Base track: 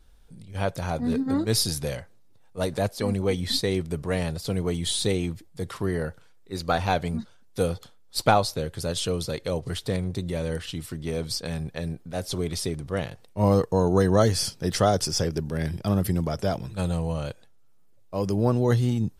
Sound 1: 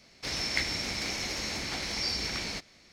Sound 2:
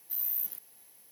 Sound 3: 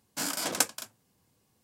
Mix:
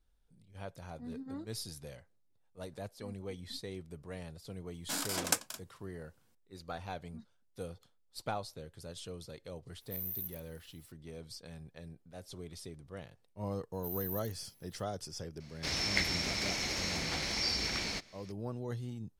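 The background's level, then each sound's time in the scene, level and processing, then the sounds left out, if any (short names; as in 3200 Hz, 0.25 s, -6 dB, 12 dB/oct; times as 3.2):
base track -18 dB
4.72 add 3 -4.5 dB
9.81 add 2 -9 dB
13.73 add 2 -10.5 dB
15.4 add 1 -1.5 dB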